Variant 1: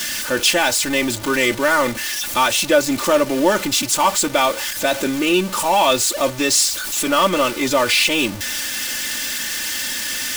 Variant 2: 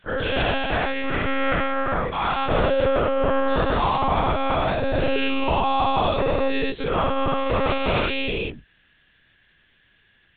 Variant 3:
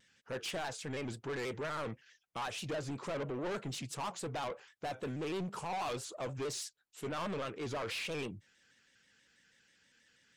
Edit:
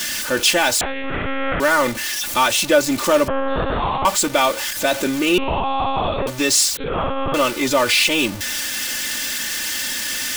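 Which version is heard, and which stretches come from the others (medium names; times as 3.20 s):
1
0.81–1.60 s: from 2
3.28–4.05 s: from 2
5.38–6.27 s: from 2
6.77–7.34 s: from 2
not used: 3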